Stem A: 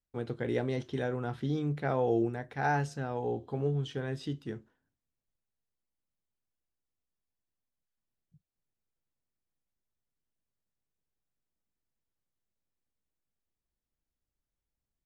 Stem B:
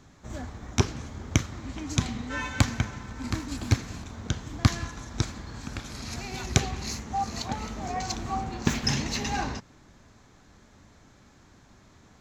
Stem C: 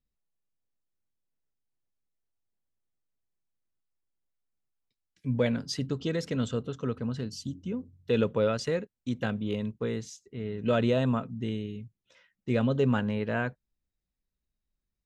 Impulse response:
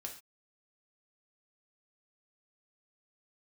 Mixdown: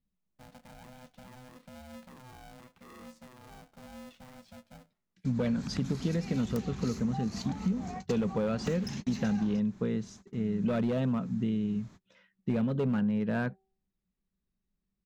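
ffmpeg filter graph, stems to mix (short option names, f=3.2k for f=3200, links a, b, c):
-filter_complex "[0:a]alimiter=level_in=4.5dB:limit=-24dB:level=0:latency=1:release=19,volume=-4.5dB,acrusher=bits=4:mode=log:mix=0:aa=0.000001,aeval=exprs='val(0)*sgn(sin(2*PI*380*n/s))':c=same,adelay=250,volume=-15.5dB[a];[1:a]aeval=exprs='0.15*(abs(mod(val(0)/0.15+3,4)-2)-1)':c=same,acompressor=threshold=-35dB:ratio=5,volume=-3.5dB[b];[2:a]lowpass=f=3.2k:p=1,bandreject=f=383.5:t=h:w=4,bandreject=f=767:t=h:w=4,volume=-0.5dB,asplit=2[c][d];[d]apad=whole_len=538246[e];[b][e]sidechaingate=range=-53dB:threshold=-55dB:ratio=16:detection=peak[f];[a][f][c]amix=inputs=3:normalize=0,asoftclip=type=hard:threshold=-22dB,equalizer=f=190:t=o:w=0.49:g=14.5,acompressor=threshold=-26dB:ratio=6"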